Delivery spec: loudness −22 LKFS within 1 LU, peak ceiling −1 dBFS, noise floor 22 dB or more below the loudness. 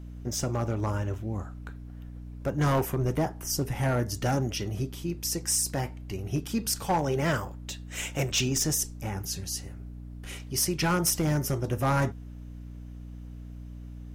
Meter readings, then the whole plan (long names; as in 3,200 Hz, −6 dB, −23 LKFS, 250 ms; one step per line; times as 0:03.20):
share of clipped samples 1.1%; peaks flattened at −19.5 dBFS; mains hum 60 Hz; hum harmonics up to 300 Hz; level of the hum −39 dBFS; integrated loudness −29.0 LKFS; sample peak −19.5 dBFS; target loudness −22.0 LKFS
→ clipped peaks rebuilt −19.5 dBFS
mains-hum notches 60/120/180/240/300 Hz
level +7 dB